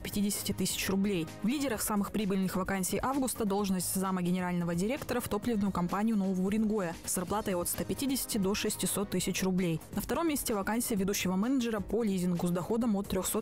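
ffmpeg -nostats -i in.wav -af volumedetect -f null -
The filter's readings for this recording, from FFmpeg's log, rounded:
mean_volume: -31.3 dB
max_volume: -22.9 dB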